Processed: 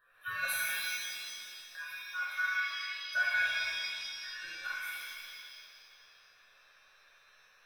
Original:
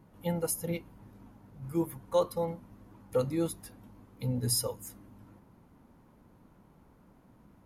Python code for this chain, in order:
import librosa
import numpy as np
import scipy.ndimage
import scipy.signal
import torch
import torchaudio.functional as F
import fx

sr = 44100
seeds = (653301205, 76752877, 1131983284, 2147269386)

y = fx.band_invert(x, sr, width_hz=2000)
y = fx.level_steps(y, sr, step_db=17, at=(1.6, 2.35))
y = fx.env_lowpass_down(y, sr, base_hz=1000.0, full_db=-27.0, at=(3.46, 4.63), fade=0.02)
y = fx.fixed_phaser(y, sr, hz=1300.0, stages=8)
y = fx.rev_shimmer(y, sr, seeds[0], rt60_s=1.9, semitones=7, shimmer_db=-2, drr_db=-6.5)
y = y * librosa.db_to_amplitude(-6.5)